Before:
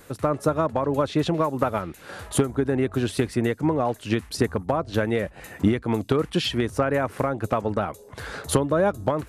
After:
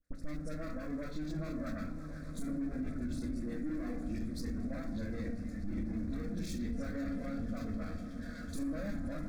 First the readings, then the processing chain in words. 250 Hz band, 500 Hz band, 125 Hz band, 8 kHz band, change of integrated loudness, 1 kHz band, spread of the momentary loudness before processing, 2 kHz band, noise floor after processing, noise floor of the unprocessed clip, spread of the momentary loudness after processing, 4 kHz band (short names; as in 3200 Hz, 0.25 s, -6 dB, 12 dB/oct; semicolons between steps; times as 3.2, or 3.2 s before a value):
-11.0 dB, -22.5 dB, -14.5 dB, -19.0 dB, -15.0 dB, -25.0 dB, 6 LU, -17.0 dB, -44 dBFS, -48 dBFS, 5 LU, -22.0 dB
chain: on a send: swelling echo 0.124 s, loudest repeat 8, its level -18 dB; on the sum: FDN reverb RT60 1.2 s, low-frequency decay 1.55×, high-frequency decay 0.55×, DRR 2.5 dB; hard clip -19 dBFS, distortion -8 dB; air absorption 88 m; half-wave rectifier; passive tone stack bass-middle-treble 10-0-1; spectral noise reduction 8 dB; fixed phaser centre 600 Hz, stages 8; gate with hold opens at -58 dBFS; dispersion highs, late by 45 ms, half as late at 1500 Hz; limiter -46 dBFS, peak gain reduction 9.5 dB; mismatched tape noise reduction encoder only; gain +16.5 dB